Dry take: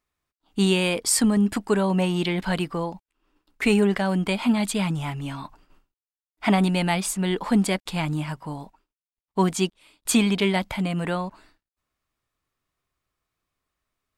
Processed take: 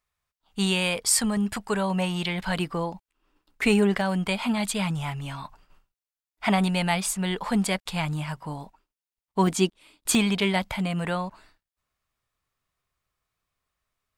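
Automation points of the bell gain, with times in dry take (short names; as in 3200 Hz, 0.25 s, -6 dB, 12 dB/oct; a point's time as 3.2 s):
bell 300 Hz 0.83 oct
-14 dB
from 2.56 s -3 dB
from 4.01 s -10 dB
from 8.36 s -3.5 dB
from 9.47 s +3 dB
from 10.15 s -7 dB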